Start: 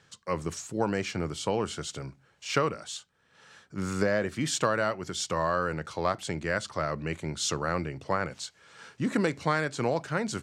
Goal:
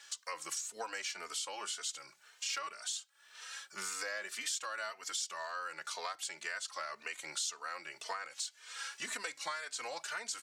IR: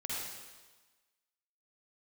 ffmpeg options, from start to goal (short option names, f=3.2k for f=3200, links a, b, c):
-filter_complex "[0:a]highpass=1k,highshelf=f=3.4k:g=11.5,acompressor=threshold=-42dB:ratio=5,asplit=2[a][b];[b]adelay=3.1,afreqshift=1.9[c];[a][c]amix=inputs=2:normalize=1,volume=7dB"